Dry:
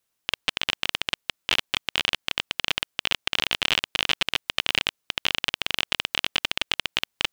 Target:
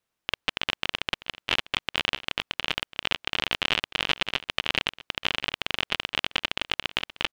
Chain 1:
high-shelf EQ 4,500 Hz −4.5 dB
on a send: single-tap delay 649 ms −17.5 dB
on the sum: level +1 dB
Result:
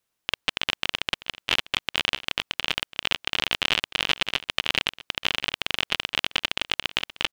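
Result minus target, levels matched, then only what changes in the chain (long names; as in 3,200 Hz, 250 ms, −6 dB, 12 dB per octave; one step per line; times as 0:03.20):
8,000 Hz band +3.0 dB
change: high-shelf EQ 4,500 Hz −12 dB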